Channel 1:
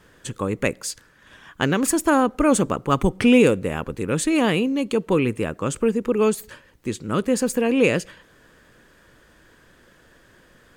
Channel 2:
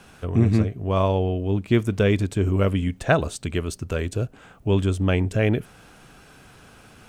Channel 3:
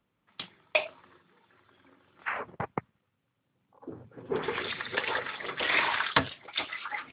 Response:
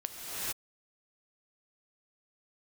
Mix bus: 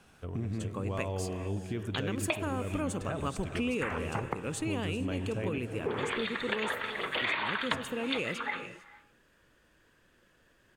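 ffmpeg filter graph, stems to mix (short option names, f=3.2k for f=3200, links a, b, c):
-filter_complex "[0:a]equalizer=f=2.7k:t=o:w=0.29:g=5.5,adelay=350,volume=-13.5dB,asplit=2[a][b];[b]volume=-17dB[c];[1:a]alimiter=limit=-14.5dB:level=0:latency=1,volume=-13dB,asplit=2[d][e];[e]volume=-10.5dB[f];[2:a]bandreject=f=63.78:t=h:w=4,bandreject=f=127.56:t=h:w=4,bandreject=f=191.34:t=h:w=4,bandreject=f=255.12:t=h:w=4,bandreject=f=318.9:t=h:w=4,bandreject=f=382.68:t=h:w=4,bandreject=f=446.46:t=h:w=4,bandreject=f=510.24:t=h:w=4,bandreject=f=574.02:t=h:w=4,bandreject=f=637.8:t=h:w=4,bandreject=f=701.58:t=h:w=4,bandreject=f=765.36:t=h:w=4,bandreject=f=829.14:t=h:w=4,bandreject=f=892.92:t=h:w=4,bandreject=f=956.7:t=h:w=4,bandreject=f=1.02048k:t=h:w=4,bandreject=f=1.08426k:t=h:w=4,bandreject=f=1.14804k:t=h:w=4,bandreject=f=1.21182k:t=h:w=4,bandreject=f=1.2756k:t=h:w=4,bandreject=f=1.33938k:t=h:w=4,bandreject=f=1.40316k:t=h:w=4,bandreject=f=1.46694k:t=h:w=4,bandreject=f=1.53072k:t=h:w=4,bandreject=f=1.5945k:t=h:w=4,bandreject=f=1.65828k:t=h:w=4,bandreject=f=1.72206k:t=h:w=4,bandreject=f=1.78584k:t=h:w=4,bandreject=f=1.84962k:t=h:w=4,adelay=1550,volume=2dB,asplit=2[g][h];[h]volume=-23.5dB[i];[3:a]atrim=start_sample=2205[j];[c][f][i]amix=inputs=3:normalize=0[k];[k][j]afir=irnorm=-1:irlink=0[l];[a][d][g][l]amix=inputs=4:normalize=0,acompressor=threshold=-29dB:ratio=4"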